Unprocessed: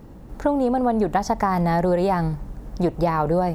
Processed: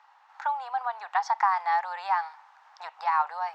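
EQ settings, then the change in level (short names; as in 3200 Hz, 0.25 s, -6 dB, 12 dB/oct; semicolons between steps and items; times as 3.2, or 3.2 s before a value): Chebyshev high-pass 830 Hz, order 5; air absorption 180 m; +2.0 dB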